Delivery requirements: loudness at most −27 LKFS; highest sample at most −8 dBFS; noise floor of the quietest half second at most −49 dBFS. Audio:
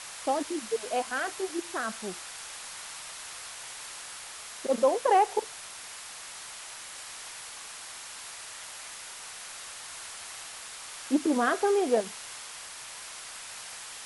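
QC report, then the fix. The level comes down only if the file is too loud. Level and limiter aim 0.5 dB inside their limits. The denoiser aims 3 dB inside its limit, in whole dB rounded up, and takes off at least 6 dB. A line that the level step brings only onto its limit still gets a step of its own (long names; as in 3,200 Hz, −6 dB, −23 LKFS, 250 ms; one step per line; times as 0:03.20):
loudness −32.5 LKFS: in spec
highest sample −12.5 dBFS: in spec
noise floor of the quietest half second −43 dBFS: out of spec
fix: broadband denoise 9 dB, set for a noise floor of −43 dBFS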